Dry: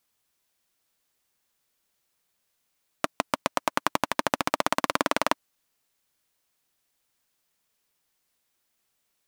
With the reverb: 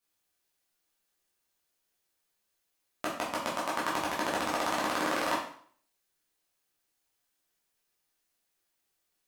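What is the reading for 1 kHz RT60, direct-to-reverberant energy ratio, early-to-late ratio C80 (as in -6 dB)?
0.55 s, -7.0 dB, 8.0 dB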